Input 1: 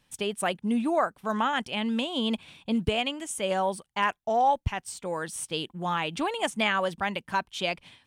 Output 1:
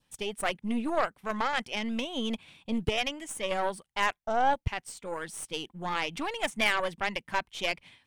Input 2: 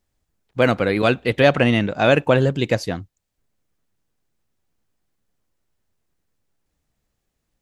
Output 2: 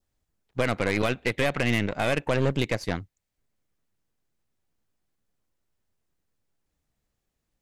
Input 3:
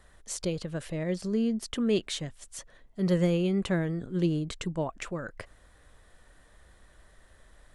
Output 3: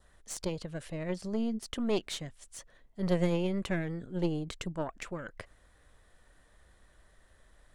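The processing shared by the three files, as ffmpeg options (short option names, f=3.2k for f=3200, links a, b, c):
-af "adynamicequalizer=threshold=0.00708:dfrequency=2100:dqfactor=3.5:tfrequency=2100:tqfactor=3.5:attack=5:release=100:ratio=0.375:range=3.5:mode=boostabove:tftype=bell,alimiter=limit=-10dB:level=0:latency=1:release=242,aeval=exprs='0.316*(cos(1*acos(clip(val(0)/0.316,-1,1)))-cos(1*PI/2))+0.0355*(cos(6*acos(clip(val(0)/0.316,-1,1)))-cos(6*PI/2))+0.00794*(cos(7*acos(clip(val(0)/0.316,-1,1)))-cos(7*PI/2))':c=same,volume=-3dB"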